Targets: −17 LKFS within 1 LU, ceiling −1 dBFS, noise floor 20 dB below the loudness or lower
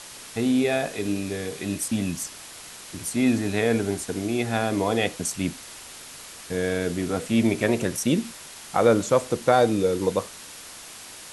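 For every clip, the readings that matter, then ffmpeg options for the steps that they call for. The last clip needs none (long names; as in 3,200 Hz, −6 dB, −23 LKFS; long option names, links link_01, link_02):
background noise floor −42 dBFS; target noise floor −45 dBFS; integrated loudness −24.5 LKFS; sample peak −5.5 dBFS; target loudness −17.0 LKFS
→ -af "afftdn=noise_reduction=6:noise_floor=-42"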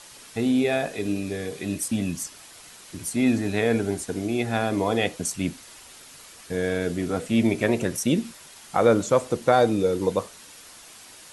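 background noise floor −47 dBFS; integrated loudness −24.5 LKFS; sample peak −5.5 dBFS; target loudness −17.0 LKFS
→ -af "volume=7.5dB,alimiter=limit=-1dB:level=0:latency=1"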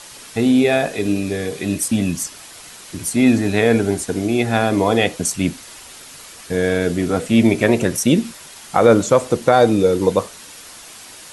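integrated loudness −17.5 LKFS; sample peak −1.0 dBFS; background noise floor −39 dBFS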